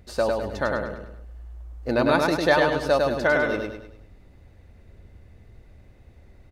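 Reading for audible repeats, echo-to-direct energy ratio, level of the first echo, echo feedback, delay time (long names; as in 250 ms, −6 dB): 5, −2.0 dB, −3.0 dB, 42%, 102 ms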